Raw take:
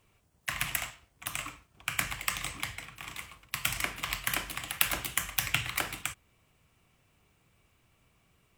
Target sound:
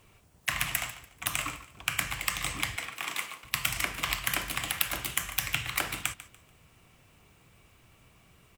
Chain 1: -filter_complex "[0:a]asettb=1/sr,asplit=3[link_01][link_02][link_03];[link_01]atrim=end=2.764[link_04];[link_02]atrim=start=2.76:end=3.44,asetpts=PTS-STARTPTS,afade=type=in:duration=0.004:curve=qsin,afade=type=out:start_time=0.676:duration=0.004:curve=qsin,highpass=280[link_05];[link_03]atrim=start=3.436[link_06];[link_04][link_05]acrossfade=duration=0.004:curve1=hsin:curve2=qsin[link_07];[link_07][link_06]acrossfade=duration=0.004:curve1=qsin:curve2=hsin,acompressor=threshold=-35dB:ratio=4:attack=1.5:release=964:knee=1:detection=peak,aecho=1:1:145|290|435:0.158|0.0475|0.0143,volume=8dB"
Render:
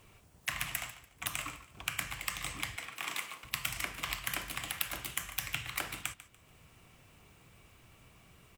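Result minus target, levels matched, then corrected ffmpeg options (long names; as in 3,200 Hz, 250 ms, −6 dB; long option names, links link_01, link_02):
downward compressor: peak gain reduction +6.5 dB
-filter_complex "[0:a]asettb=1/sr,asplit=3[link_01][link_02][link_03];[link_01]atrim=end=2.764[link_04];[link_02]atrim=start=2.76:end=3.44,asetpts=PTS-STARTPTS,afade=type=in:duration=0.004:curve=qsin,afade=type=out:start_time=0.676:duration=0.004:curve=qsin,highpass=280[link_05];[link_03]atrim=start=3.436[link_06];[link_04][link_05]acrossfade=duration=0.004:curve1=hsin:curve2=qsin[link_07];[link_07][link_06]acrossfade=duration=0.004:curve1=qsin:curve2=hsin,acompressor=threshold=-26.5dB:ratio=4:attack=1.5:release=964:knee=1:detection=peak,aecho=1:1:145|290|435:0.158|0.0475|0.0143,volume=8dB"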